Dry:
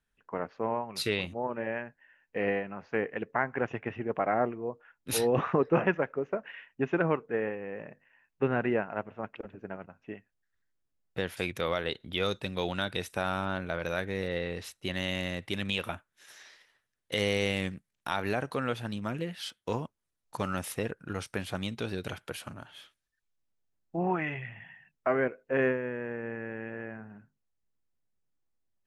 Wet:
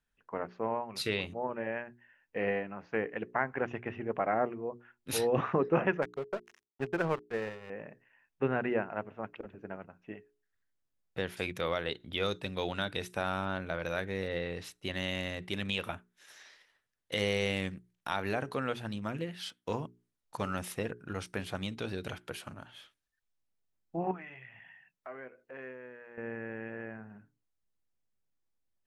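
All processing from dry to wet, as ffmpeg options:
-filter_complex "[0:a]asettb=1/sr,asplit=3[s0][s1][s2];[s0]atrim=end=6.024[s3];[s1]atrim=start=6.02:end=7.7,asetpts=PTS-STARTPTS,afade=t=in:d=0.004:c=qsin,afade=t=out:st=1.676:d=0.004:c=qsin,bandreject=f=290:w=5.5,aeval=exprs='sgn(val(0))*max(abs(val(0))-0.01,0)':c=same[s4];[s2]atrim=start=7.696[s5];[s3][s4]acrossfade=d=0.004:c1=hsin:c2=qsin[s6];[s6][s5]acrossfade=d=0.004:c1=qsin:c2=hsin,asettb=1/sr,asplit=3[s7][s8][s9];[s7]atrim=end=24.114[s10];[s8]atrim=start=24.11:end=26.18,asetpts=PTS-STARTPTS,afade=t=in:d=0.004:c=qsin,afade=t=out:st=2.066:d=0.004:c=qsin,lowshelf=f=310:g=-10,acompressor=threshold=0.00316:ratio=2:attack=3.2:release=140:knee=1:detection=peak,asplit=2[s11][s12];[s12]adelay=16,volume=0.211[s13];[s11][s13]amix=inputs=2:normalize=0,atrim=end_sample=91287[s14];[s9]atrim=start=26.176[s15];[s10][s14]acrossfade=d=0.004:c1=hsin:c2=qsin[s16];[s16][s15]acrossfade=d=0.004:c1=qsin:c2=hsin,highshelf=f=9800:g=-4,bandreject=f=60:t=h:w=6,bandreject=f=120:t=h:w=6,bandreject=f=180:t=h:w=6,bandreject=f=240:t=h:w=6,bandreject=f=300:t=h:w=6,bandreject=f=360:t=h:w=6,bandreject=f=420:t=h:w=6,volume=0.794"

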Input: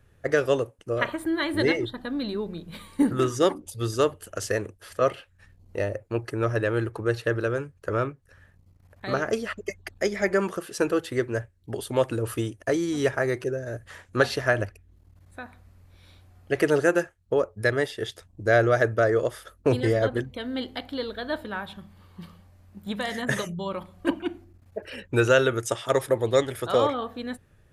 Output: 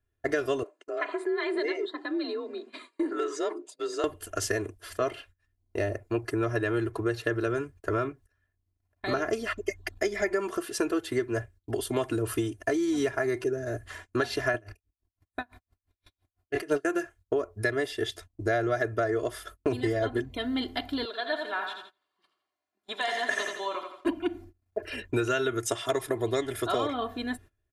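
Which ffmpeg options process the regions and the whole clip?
-filter_complex "[0:a]asettb=1/sr,asplit=3[s0][s1][s2];[s0]atrim=end=0.634[s3];[s1]atrim=start=0.63:end=4.04,asetpts=PTS-STARTPTS,afade=t=in:d=0.004:c=qsin,afade=t=out:st=3.406:d=0.004:c=qsin,afreqshift=50,highpass=f=330:w=0.5412,highpass=f=330:w=1.3066,equalizer=f=700:t=q:w=4:g=-4,equalizer=f=3300:t=q:w=4:g=-7,equalizer=f=5700:t=q:w=4:g=-9,lowpass=f=7100:w=0.5412,lowpass=f=7100:w=1.3066,acompressor=threshold=0.0251:ratio=2:attack=3.2:release=140:knee=1:detection=peak[s4];[s2]atrim=start=4.036[s5];[s3][s4]acrossfade=d=0.004:c1=hsin:c2=qsin[s6];[s6][s5]acrossfade=d=0.004:c1=qsin:c2=hsin,asettb=1/sr,asplit=3[s7][s8][s9];[s7]atrim=end=14.544[s10];[s8]atrim=start=14.54:end=16.85,asetpts=PTS-STARTPTS,afade=t=in:d=0.004:c=qsin,afade=t=out:st=2.306:d=0.004:c=qsin,acontrast=40,asplit=2[s11][s12];[s12]adelay=28,volume=0.282[s13];[s11][s13]amix=inputs=2:normalize=0,atrim=end_sample=101871,aeval=exprs='val(0)*pow(10,-34*(0.5-0.5*cos(2*PI*5.9*n/s))/20)':c=same[s14];[s9]atrim=start=16.846[s15];[s10][s14]acrossfade=d=0.004:c1=hsin:c2=qsin[s16];[s16][s15]acrossfade=d=0.004:c1=qsin:c2=hsin,asettb=1/sr,asplit=3[s17][s18][s19];[s17]atrim=end=21.054[s20];[s18]atrim=start=21.05:end=24.06,asetpts=PTS-STARTPTS,afade=t=in:d=0.004:c=qsin,afade=t=out:st=3.006:d=0.004:c=qsin,highpass=550,lowpass=7400,aecho=1:1:84|168|252|336|420:0.501|0.221|0.097|0.0427|0.0188,atrim=end_sample=132741[s21];[s19]atrim=start=24.056[s22];[s20][s21]acrossfade=d=0.004:c1=hsin:c2=qsin[s23];[s23][s22]acrossfade=d=0.004:c1=qsin:c2=hsin,agate=range=0.0708:threshold=0.00398:ratio=16:detection=peak,aecho=1:1:2.9:0.8,acompressor=threshold=0.0631:ratio=6"

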